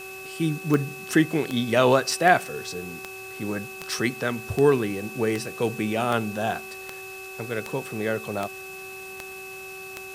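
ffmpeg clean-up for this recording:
-af "adeclick=t=4,bandreject=f=381.3:t=h:w=4,bandreject=f=762.6:t=h:w=4,bandreject=f=1143.9:t=h:w=4,bandreject=f=1525.2:t=h:w=4,bandreject=f=2600:w=30,afwtdn=0.005"

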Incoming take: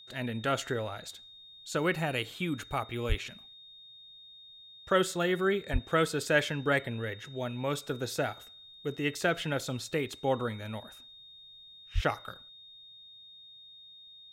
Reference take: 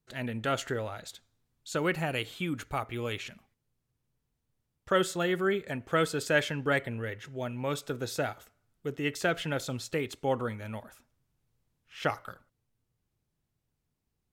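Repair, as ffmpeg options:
-filter_complex "[0:a]bandreject=f=3700:w=30,asplit=3[s0][s1][s2];[s0]afade=t=out:st=3.08:d=0.02[s3];[s1]highpass=f=140:w=0.5412,highpass=f=140:w=1.3066,afade=t=in:st=3.08:d=0.02,afade=t=out:st=3.2:d=0.02[s4];[s2]afade=t=in:st=3.2:d=0.02[s5];[s3][s4][s5]amix=inputs=3:normalize=0,asplit=3[s6][s7][s8];[s6]afade=t=out:st=5.72:d=0.02[s9];[s7]highpass=f=140:w=0.5412,highpass=f=140:w=1.3066,afade=t=in:st=5.72:d=0.02,afade=t=out:st=5.84:d=0.02[s10];[s8]afade=t=in:st=5.84:d=0.02[s11];[s9][s10][s11]amix=inputs=3:normalize=0,asplit=3[s12][s13][s14];[s12]afade=t=out:st=11.94:d=0.02[s15];[s13]highpass=f=140:w=0.5412,highpass=f=140:w=1.3066,afade=t=in:st=11.94:d=0.02,afade=t=out:st=12.06:d=0.02[s16];[s14]afade=t=in:st=12.06:d=0.02[s17];[s15][s16][s17]amix=inputs=3:normalize=0"

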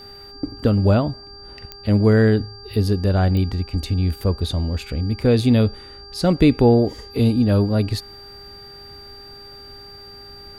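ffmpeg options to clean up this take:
-af "adeclick=t=4,bandreject=f=402.1:t=h:w=4,bandreject=f=804.2:t=h:w=4,bandreject=f=1206.3:t=h:w=4,bandreject=f=1608.4:t=h:w=4,bandreject=f=4700:w=30"

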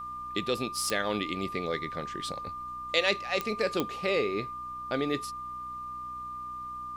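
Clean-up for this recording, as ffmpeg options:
-af "adeclick=t=4,bandreject=f=62.1:t=h:w=4,bandreject=f=124.2:t=h:w=4,bandreject=f=186.3:t=h:w=4,bandreject=f=248.4:t=h:w=4,bandreject=f=310.5:t=h:w=4,bandreject=f=1200:w=30,agate=range=0.0891:threshold=0.0282"

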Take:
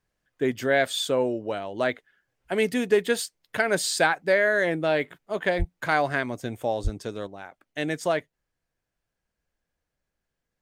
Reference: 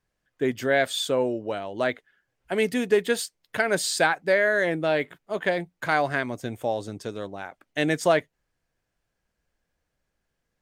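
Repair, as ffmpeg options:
-filter_complex "[0:a]asplit=3[s0][s1][s2];[s0]afade=t=out:st=5.58:d=0.02[s3];[s1]highpass=f=140:w=0.5412,highpass=f=140:w=1.3066,afade=t=in:st=5.58:d=0.02,afade=t=out:st=5.7:d=0.02[s4];[s2]afade=t=in:st=5.7:d=0.02[s5];[s3][s4][s5]amix=inputs=3:normalize=0,asplit=3[s6][s7][s8];[s6]afade=t=out:st=6.83:d=0.02[s9];[s7]highpass=f=140:w=0.5412,highpass=f=140:w=1.3066,afade=t=in:st=6.83:d=0.02,afade=t=out:st=6.95:d=0.02[s10];[s8]afade=t=in:st=6.95:d=0.02[s11];[s9][s10][s11]amix=inputs=3:normalize=0,asetnsamples=n=441:p=0,asendcmd='7.27 volume volume 4.5dB',volume=1"

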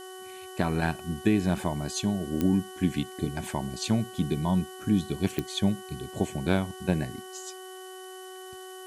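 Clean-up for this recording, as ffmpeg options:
-af "adeclick=t=4,bandreject=f=373.6:t=h:w=4,bandreject=f=747.2:t=h:w=4,bandreject=f=1120.8:t=h:w=4,bandreject=f=1494.4:t=h:w=4,bandreject=f=1868:t=h:w=4,bandreject=f=3000:w=30,afftdn=nr=29:nf=-43"

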